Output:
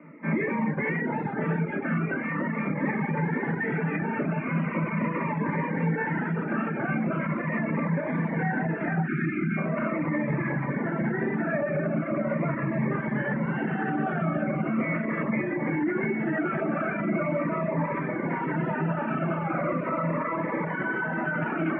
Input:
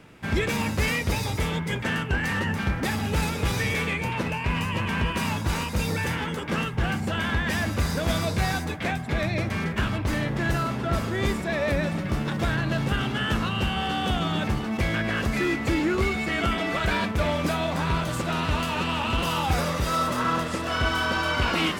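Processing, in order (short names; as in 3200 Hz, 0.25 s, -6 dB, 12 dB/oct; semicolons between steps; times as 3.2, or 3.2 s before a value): Chebyshev band-pass 150–2200 Hz, order 5; echo with dull and thin repeats by turns 0.543 s, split 1600 Hz, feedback 89%, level -7.5 dB; shoebox room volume 760 m³, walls furnished, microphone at 2.6 m; spectral gain 9.07–9.57, 390–1200 Hz -30 dB; limiter -17.5 dBFS, peak gain reduction 9.5 dB; reverb removal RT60 0.86 s; cascading phaser falling 0.4 Hz; gain +2 dB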